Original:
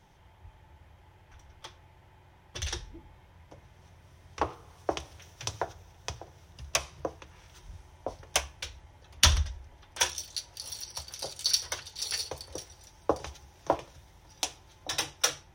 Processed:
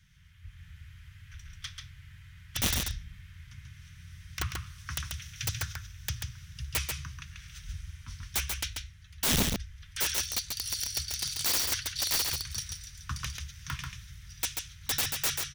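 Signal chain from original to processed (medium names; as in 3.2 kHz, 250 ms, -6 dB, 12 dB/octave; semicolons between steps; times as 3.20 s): inverse Chebyshev band-stop 360–740 Hz, stop band 60 dB; level rider gain up to 7 dB; integer overflow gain 21.5 dB; delay 138 ms -4.5 dB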